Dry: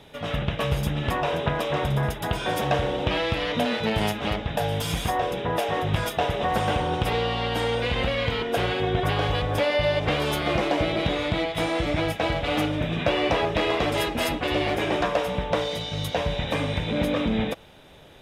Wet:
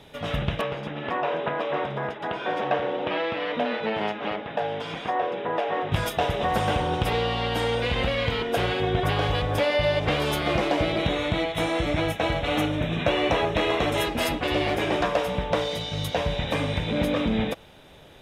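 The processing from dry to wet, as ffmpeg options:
-filter_complex "[0:a]asettb=1/sr,asplit=3[a][b][c];[a]atrim=end=0.614[d];[b]atrim=start=0.61:end=5.92,asetpts=PTS-STARTPTS,afade=t=in:d=0.004:c=qsin,afade=t=out:st=5.306:d=0.004:c=qsin,highpass=270,lowpass=2.5k[e];[c]atrim=start=5.916[f];[d][e]acrossfade=d=0.004:c1=hsin:c2=qsin[g];[g][f]acrossfade=d=0.004:c1=qsin:c2=hsin,asettb=1/sr,asplit=3[h][i][j];[h]atrim=end=10.984[k];[i]atrim=start=10.98:end=14.05,asetpts=PTS-STARTPTS,afade=t=in:d=0.004:c=qsin,afade=t=out:st=3.066:d=0.004:c=qsin,asuperstop=centerf=4800:order=4:qfactor=5.9[l];[j]atrim=start=14.046[m];[k][l]acrossfade=d=0.004:c1=hsin:c2=qsin[n];[n][m]acrossfade=d=0.004:c1=qsin:c2=hsin"

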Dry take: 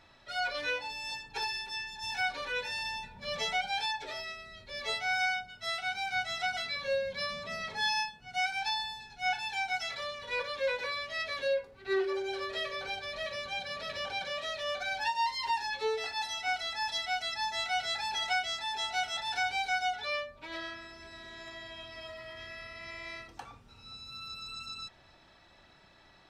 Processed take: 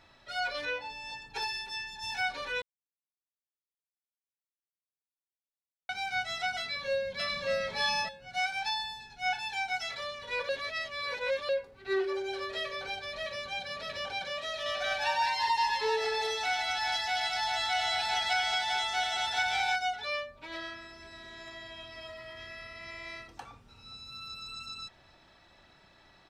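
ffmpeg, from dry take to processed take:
-filter_complex "[0:a]asettb=1/sr,asplit=3[a][b][c];[a]atrim=end=0.654[d];[b]atrim=start=0.65:end=1.22,asetpts=PTS-STARTPTS,afade=t=in:d=0.004:c=qsin,afade=t=out:st=0.566:d=0.004:c=qsin,lowpass=f=2.9k:p=1[e];[c]atrim=start=1.216[f];[d][e]acrossfade=d=0.004:c1=hsin:c2=qsin[g];[g][f]acrossfade=d=0.004:c1=qsin:c2=hsin,asplit=2[h][i];[i]afade=t=in:st=6.61:d=0.01,afade=t=out:st=7.5:d=0.01,aecho=0:1:580|1160:0.944061|0.0944061[j];[h][j]amix=inputs=2:normalize=0,asettb=1/sr,asplit=3[k][l][m];[k]atrim=end=14.444[n];[l]atrim=start=14.44:end=19.76,asetpts=PTS-STARTPTS,afade=t=in:d=0.004:c=qsin,afade=t=out:st=5.316:d=0.004:c=qsin,aecho=1:1:95|218|397:0.473|0.631|0.596,atrim=end_sample=234612[o];[m]atrim=start=19.756[p];[n][o]acrossfade=d=0.004:c1=hsin:c2=qsin[q];[q][p]acrossfade=d=0.004:c1=qsin:c2=hsin,asplit=5[r][s][t][u][v];[r]atrim=end=2.62,asetpts=PTS-STARTPTS,afade=t=out:st=2.616:d=0.004:c=hsin[w];[s]atrim=start=2.62:end=5.89,asetpts=PTS-STARTPTS,volume=0[x];[t]atrim=start=5.89:end=10.492,asetpts=PTS-STARTPTS,afade=t=in:d=0.004:c=hsin[y];[u]atrim=start=10.488:end=11.492,asetpts=PTS-STARTPTS,areverse[z];[v]atrim=start=11.488[aa];[w][x][y]concat=n=3:v=0:a=1[ab];[ab][z]acrossfade=d=0.004:c1=hsin:c2=hsin[ac];[ac][aa]acrossfade=d=0.004:c1=hsin:c2=hsin"

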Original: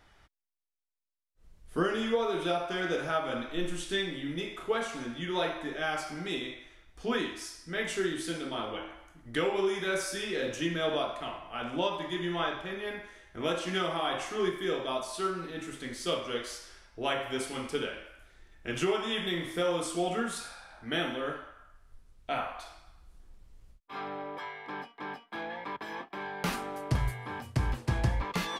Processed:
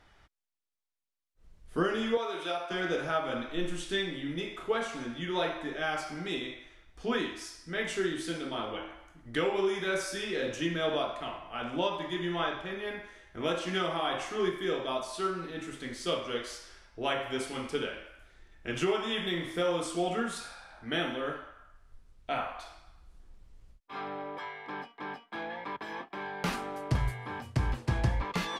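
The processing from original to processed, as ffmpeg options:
-filter_complex "[0:a]asettb=1/sr,asplit=3[a][b][c];[a]atrim=end=2.174[d];[b]atrim=start=2.17:end=2.71,asetpts=PTS-STARTPTS,afade=t=in:d=0.004:c=qsin,afade=t=out:st=0.536:d=0.004:c=qsin,highpass=f=750:p=1[e];[c]atrim=start=2.706[f];[d][e]acrossfade=d=0.004:c1=hsin:c2=qsin[g];[g][f]acrossfade=d=0.004:c1=qsin:c2=hsin,highshelf=f=12k:g=-11"

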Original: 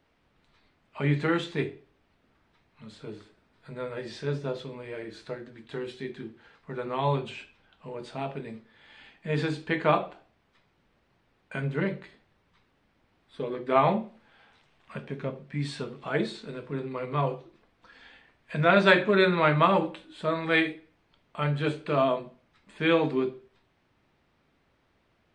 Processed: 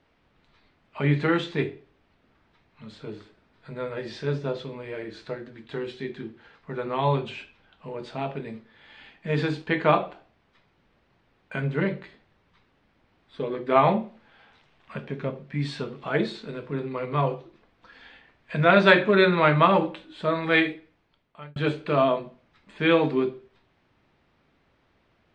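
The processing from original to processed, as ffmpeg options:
-filter_complex "[0:a]asettb=1/sr,asplit=3[a][b][c];[a]atrim=end=9.274[d];[b]atrim=start=9.27:end=9.67,asetpts=PTS-STARTPTS,afade=t=in:d=0.004:c=qsin,afade=t=out:st=0.396:d=0.004:c=qsin,aeval=exprs='sgn(val(0))*max(abs(val(0))-0.00158,0)':c=same[e];[c]atrim=start=9.666[f];[d][e]acrossfade=d=0.004:c1=hsin:c2=qsin[g];[g][f]acrossfade=d=0.004:c1=qsin:c2=hsin,asplit=2[h][i];[h]atrim=end=21.56,asetpts=PTS-STARTPTS,afade=t=out:st=20.74:d=0.82[j];[i]atrim=start=21.56,asetpts=PTS-STARTPTS,afade=t=in:d=0.004:c=hsin[k];[j][k]concat=n=2:v=0:a=1,lowpass=5.8k,volume=3dB"

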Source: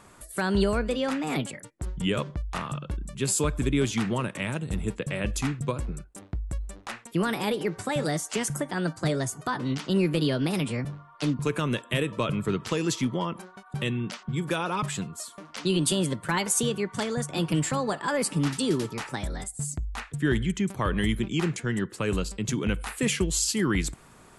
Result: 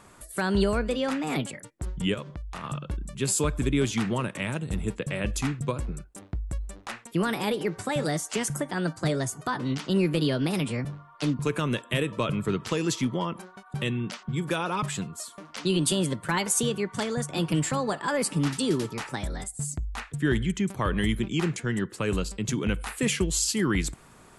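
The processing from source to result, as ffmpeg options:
-filter_complex "[0:a]asettb=1/sr,asplit=3[a][b][c];[a]atrim=end=2.144[d];[b]atrim=start=2.14:end=2.64,asetpts=PTS-STARTPTS,afade=t=in:d=0.004:c=qsin,afade=t=out:st=0.496:d=0.004:c=qsin,acompressor=threshold=-38dB:ratio=2:attack=3.2:release=140:knee=1:detection=peak[e];[c]atrim=start=2.636[f];[d][e]acrossfade=d=0.004:c1=hsin:c2=qsin[g];[g][f]acrossfade=d=0.004:c1=qsin:c2=hsin"

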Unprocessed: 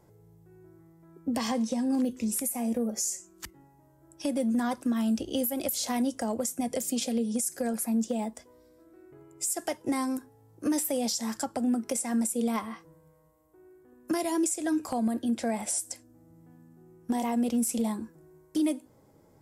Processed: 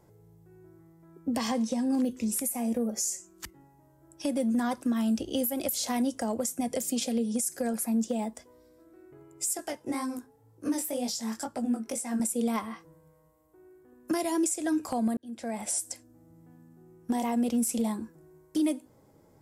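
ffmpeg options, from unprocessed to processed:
-filter_complex "[0:a]asettb=1/sr,asplit=3[a][b][c];[a]atrim=end=9.574[d];[b]atrim=start=9.57:end=12.2,asetpts=PTS-STARTPTS,afade=t=in:d=0.004:c=qsin,afade=t=out:st=2.626:d=0.004:c=qsin,flanger=delay=16:depth=6.9:speed=2[e];[c]atrim=start=12.196[f];[d][e]acrossfade=d=0.004:c1=hsin:c2=qsin[g];[g][f]acrossfade=d=0.004:c1=qsin:c2=hsin,asplit=2[h][i];[h]atrim=end=15.17,asetpts=PTS-STARTPTS,afade=t=out:st=15.166:d=0.004:c=hsin[j];[i]atrim=start=15.17,asetpts=PTS-STARTPTS,afade=t=in:d=0.56[k];[j][k]concat=n=2:v=0:a=1"

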